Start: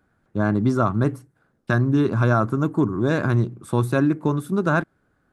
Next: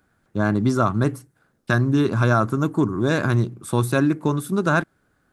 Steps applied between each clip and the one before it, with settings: treble shelf 2.6 kHz +8.5 dB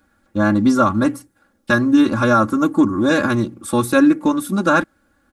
comb 3.6 ms, depth 100%; trim +2 dB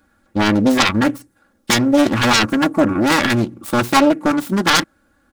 self-modulated delay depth 0.94 ms; in parallel at -2 dB: level held to a coarse grid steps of 23 dB; on the sum: trim -1 dB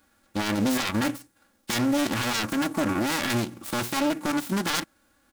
formants flattened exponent 0.6; peak limiter -10.5 dBFS, peak gain reduction 11.5 dB; trim -5.5 dB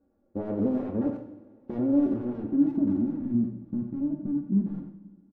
low-pass sweep 470 Hz -> 220 Hz, 1.77–3.31 s; speakerphone echo 90 ms, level -9 dB; two-slope reverb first 0.62 s, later 2.6 s, from -17 dB, DRR 4 dB; trim -5.5 dB

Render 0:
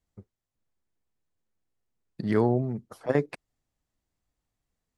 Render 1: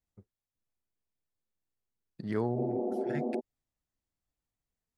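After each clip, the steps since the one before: spectral replace 2.58–3.37 s, 210–1300 Hz before; trim -8 dB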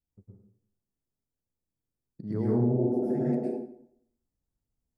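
FFT filter 300 Hz 0 dB, 3.2 kHz -21 dB, 5.3 kHz -10 dB; plate-style reverb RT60 0.67 s, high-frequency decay 0.8×, pre-delay 95 ms, DRR -6 dB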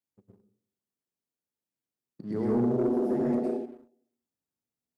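Bessel high-pass 250 Hz, order 2; Schroeder reverb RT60 0.32 s, combs from 26 ms, DRR 12 dB; waveshaping leveller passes 1

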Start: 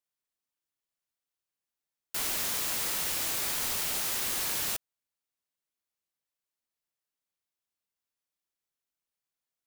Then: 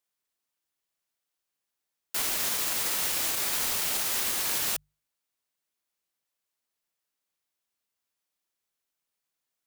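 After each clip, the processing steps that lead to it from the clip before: peak limiter -23.5 dBFS, peak gain reduction 5 dB; bass shelf 230 Hz -3.5 dB; hum notches 50/100/150 Hz; trim +5 dB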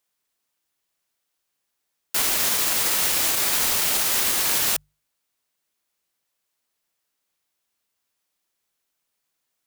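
short-mantissa float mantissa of 2-bit; trim +7 dB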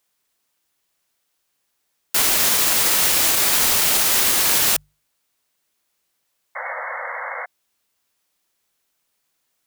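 in parallel at -5 dB: saturation -22.5 dBFS, distortion -10 dB; on the sum: painted sound noise, 6.55–7.46 s, 480–2200 Hz -31 dBFS; trim +2 dB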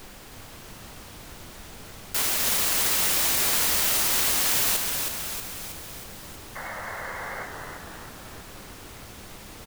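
added noise pink -37 dBFS; on a send: frequency-shifting echo 318 ms, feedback 58%, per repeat -110 Hz, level -5 dB; on the sum: trim -7.5 dB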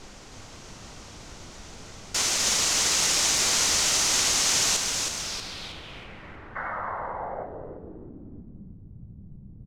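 band-stop 1.7 kHz, Q 27; low-pass sweep 6.4 kHz -> 160 Hz, 5.17–8.82 s; tape noise reduction on one side only decoder only

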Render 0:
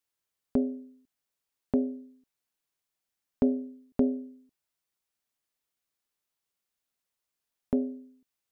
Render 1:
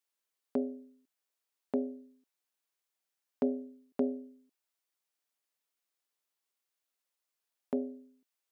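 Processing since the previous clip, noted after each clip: high-pass 320 Hz 12 dB/octave; trim -1.5 dB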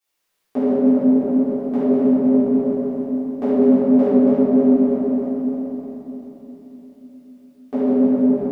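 backward echo that repeats 153 ms, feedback 69%, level -6 dB; delay with an opening low-pass 131 ms, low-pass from 200 Hz, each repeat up 1 oct, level 0 dB; reverberation RT60 3.5 s, pre-delay 3 ms, DRR -17.5 dB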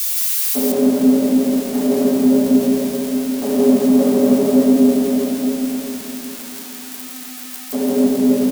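zero-crossing glitches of -16.5 dBFS; on a send: delay 166 ms -3 dB

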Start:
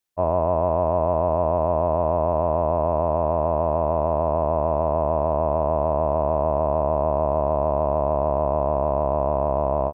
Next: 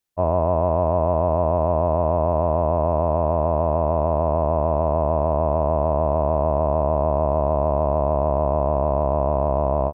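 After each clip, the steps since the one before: bass shelf 240 Hz +5 dB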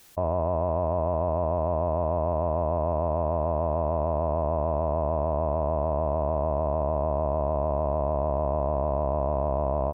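peak limiter -16 dBFS, peak gain reduction 7 dB; level flattener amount 50%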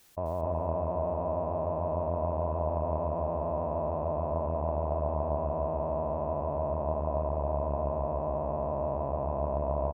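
feedback delay 256 ms, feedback 17%, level -3.5 dB; trim -6.5 dB

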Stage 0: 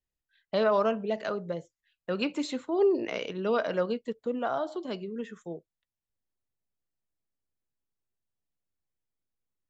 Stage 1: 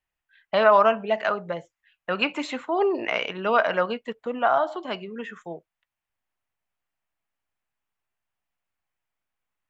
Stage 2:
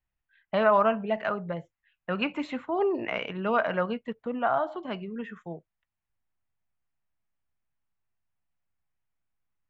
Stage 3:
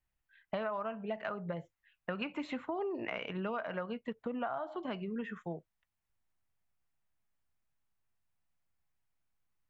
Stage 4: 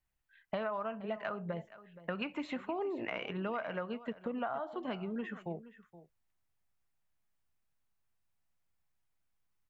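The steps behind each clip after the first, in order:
high-order bell 1.4 kHz +11.5 dB 2.5 oct
tone controls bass +11 dB, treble -11 dB; trim -5 dB
compression 8:1, threshold -34 dBFS, peak gain reduction 17 dB
delay 472 ms -16.5 dB

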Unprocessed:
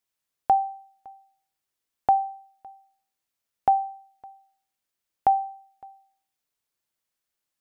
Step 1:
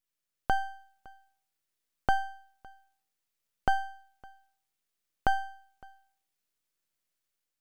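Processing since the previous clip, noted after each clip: peaking EQ 860 Hz -7.5 dB 0.6 oct; level rider gain up to 3.5 dB; half-wave rectifier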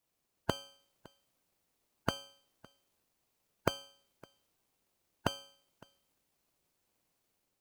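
spectral gate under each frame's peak -15 dB weak; in parallel at -5 dB: sample-and-hold 24×; on the sum: trim +4 dB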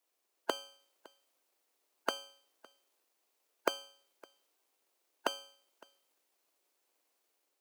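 high-pass 330 Hz 24 dB/octave; trim +1 dB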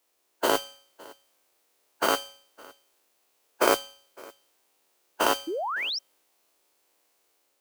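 every event in the spectrogram widened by 120 ms; modulation noise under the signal 11 dB; painted sound rise, 5.47–5.99 s, 300–5800 Hz -34 dBFS; trim +4 dB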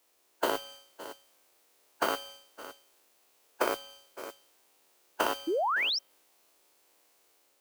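dynamic bell 7.3 kHz, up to -4 dB, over -42 dBFS, Q 0.8; compression 16:1, threshold -28 dBFS, peak gain reduction 13.5 dB; trim +3 dB

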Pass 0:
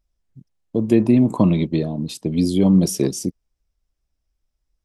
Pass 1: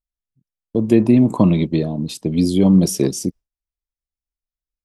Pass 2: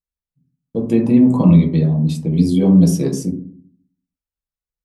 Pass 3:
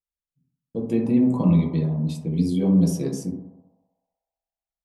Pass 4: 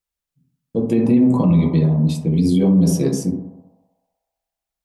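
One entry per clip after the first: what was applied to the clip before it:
gate with hold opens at -27 dBFS; trim +2 dB
reverberation RT60 0.55 s, pre-delay 3 ms, DRR -2 dB; trim -5.5 dB
band-passed feedback delay 63 ms, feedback 81%, band-pass 790 Hz, level -9.5 dB; trim -7.5 dB
loudness maximiser +14.5 dB; trim -6.5 dB

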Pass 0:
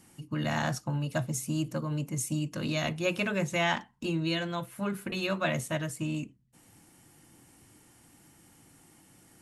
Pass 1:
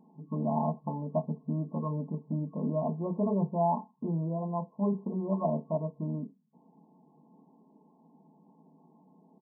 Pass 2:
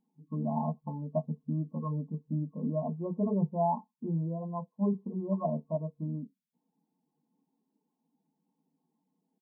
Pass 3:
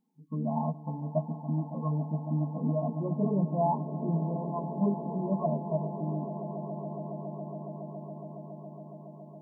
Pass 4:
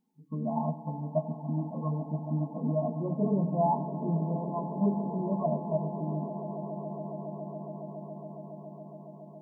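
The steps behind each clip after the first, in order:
FFT band-pass 140–1100 Hz; comb 4.6 ms, depth 71%
expander on every frequency bin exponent 1.5; dynamic bell 120 Hz, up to +4 dB, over -48 dBFS, Q 1.2
echo with a slow build-up 139 ms, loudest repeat 8, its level -16 dB; trim +1 dB
reverberation RT60 1.3 s, pre-delay 4 ms, DRR 11.5 dB

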